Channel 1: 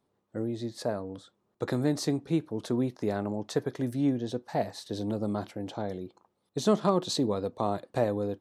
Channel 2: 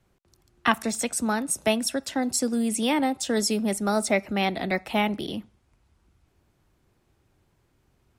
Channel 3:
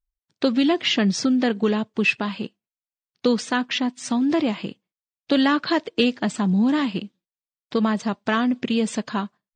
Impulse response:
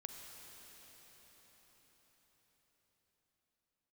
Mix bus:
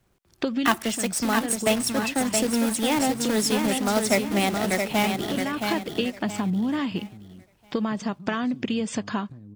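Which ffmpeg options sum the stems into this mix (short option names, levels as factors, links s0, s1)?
-filter_complex "[0:a]firequalizer=gain_entry='entry(200,0);entry(530,-30);entry(1300,-23)':delay=0.05:min_phase=1,acompressor=threshold=0.00708:ratio=4,adelay=1350,volume=1.06[s0];[1:a]acrusher=bits=2:mode=log:mix=0:aa=0.000001,volume=1,asplit=3[s1][s2][s3];[s2]volume=0.531[s4];[2:a]acompressor=threshold=0.0562:ratio=6,bandreject=f=4000:w=7.9,volume=1.26[s5];[s3]apad=whole_len=421594[s6];[s5][s6]sidechaincompress=threshold=0.0501:ratio=8:attack=11:release=822[s7];[s4]aecho=0:1:671|1342|2013|2684|3355:1|0.33|0.109|0.0359|0.0119[s8];[s0][s1][s7][s8]amix=inputs=4:normalize=0"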